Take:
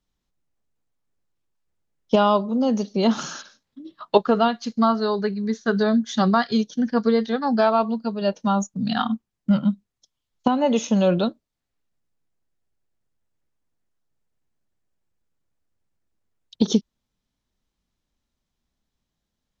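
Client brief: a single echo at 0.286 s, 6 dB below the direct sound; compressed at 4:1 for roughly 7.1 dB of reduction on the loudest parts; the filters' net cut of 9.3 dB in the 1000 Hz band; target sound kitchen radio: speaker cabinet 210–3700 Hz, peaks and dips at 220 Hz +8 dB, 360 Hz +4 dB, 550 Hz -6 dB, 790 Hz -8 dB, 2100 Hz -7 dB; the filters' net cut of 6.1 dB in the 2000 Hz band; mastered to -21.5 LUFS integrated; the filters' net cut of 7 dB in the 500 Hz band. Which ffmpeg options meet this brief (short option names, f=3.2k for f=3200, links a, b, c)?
-af "equalizer=f=500:t=o:g=-5,equalizer=f=1k:t=o:g=-5,equalizer=f=2k:t=o:g=-3.5,acompressor=threshold=-23dB:ratio=4,highpass=210,equalizer=f=220:t=q:w=4:g=8,equalizer=f=360:t=q:w=4:g=4,equalizer=f=550:t=q:w=4:g=-6,equalizer=f=790:t=q:w=4:g=-8,equalizer=f=2.1k:t=q:w=4:g=-7,lowpass=f=3.7k:w=0.5412,lowpass=f=3.7k:w=1.3066,aecho=1:1:286:0.501,volume=3.5dB"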